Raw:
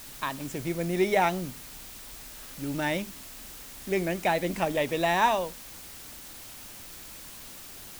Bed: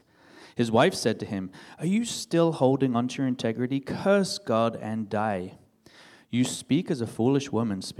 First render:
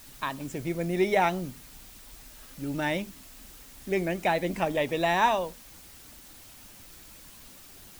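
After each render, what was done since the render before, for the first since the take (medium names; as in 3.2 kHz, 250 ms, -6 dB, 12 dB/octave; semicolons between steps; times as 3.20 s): noise reduction 6 dB, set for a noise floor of -45 dBFS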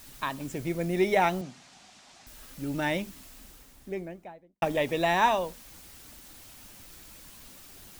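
1.41–2.27 s: cabinet simulation 180–7100 Hz, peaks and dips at 300 Hz -6 dB, 460 Hz -7 dB, 730 Hz +8 dB; 3.19–4.62 s: studio fade out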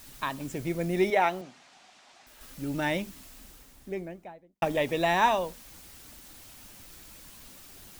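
1.10–2.41 s: tone controls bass -12 dB, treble -6 dB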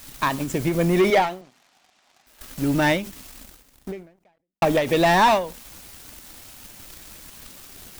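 waveshaping leveller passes 3; endings held to a fixed fall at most 130 dB/s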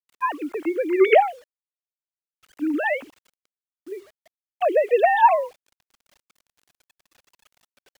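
formants replaced by sine waves; bit crusher 9-bit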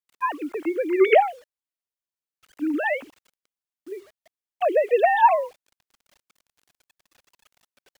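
trim -1 dB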